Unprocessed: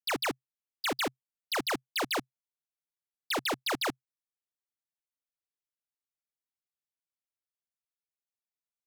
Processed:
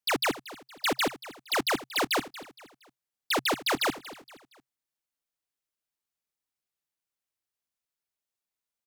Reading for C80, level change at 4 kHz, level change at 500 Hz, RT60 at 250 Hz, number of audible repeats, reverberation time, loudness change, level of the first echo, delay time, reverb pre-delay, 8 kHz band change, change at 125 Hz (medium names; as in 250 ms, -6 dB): no reverb, +4.0 dB, +4.0 dB, no reverb, 3, no reverb, +4.0 dB, -16.5 dB, 233 ms, no reverb, +4.0 dB, +4.0 dB